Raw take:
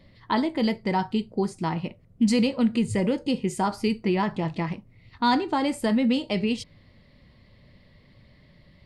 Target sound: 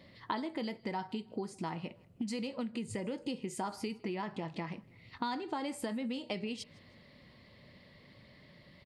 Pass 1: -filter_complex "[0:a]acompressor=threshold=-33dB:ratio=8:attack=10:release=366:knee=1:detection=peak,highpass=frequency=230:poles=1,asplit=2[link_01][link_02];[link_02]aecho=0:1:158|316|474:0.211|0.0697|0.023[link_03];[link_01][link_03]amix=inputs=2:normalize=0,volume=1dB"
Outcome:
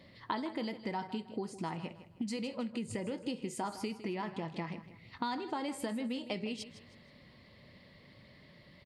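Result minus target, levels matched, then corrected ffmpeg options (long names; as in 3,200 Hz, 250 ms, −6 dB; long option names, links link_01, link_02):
echo-to-direct +11 dB
-filter_complex "[0:a]acompressor=threshold=-33dB:ratio=8:attack=10:release=366:knee=1:detection=peak,highpass=frequency=230:poles=1,asplit=2[link_01][link_02];[link_02]aecho=0:1:158|316:0.0596|0.0197[link_03];[link_01][link_03]amix=inputs=2:normalize=0,volume=1dB"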